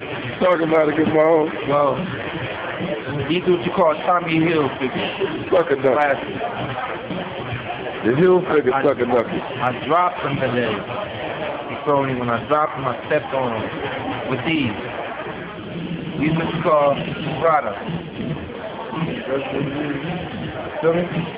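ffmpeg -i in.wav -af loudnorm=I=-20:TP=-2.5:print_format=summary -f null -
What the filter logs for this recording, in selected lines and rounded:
Input Integrated:    -21.1 LUFS
Input True Peak:      -5.7 dBTP
Input LRA:             4.9 LU
Input Threshold:     -31.1 LUFS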